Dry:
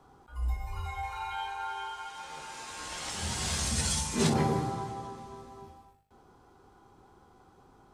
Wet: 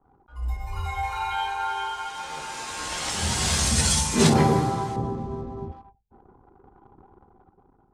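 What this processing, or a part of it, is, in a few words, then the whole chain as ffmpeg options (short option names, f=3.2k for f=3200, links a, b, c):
voice memo with heavy noise removal: -filter_complex "[0:a]asettb=1/sr,asplit=3[a][b][c];[a]atrim=end=4.964[d];[b]atrim=start=4.96:end=5.72,asetpts=PTS-STARTPTS,afade=t=in:d=0.004:c=qsin,afade=t=out:st=0.756:d=0.004:c=qsin,tiltshelf=f=760:g=10[e];[c]atrim=start=5.716[f];[d][e]acrossfade=d=0.004:c1=hsin:c2=qsin[g];[g][f]acrossfade=d=0.004:c1=qsin:c2=hsin,anlmdn=0.000398,dynaudnorm=f=200:g=7:m=8.5dB"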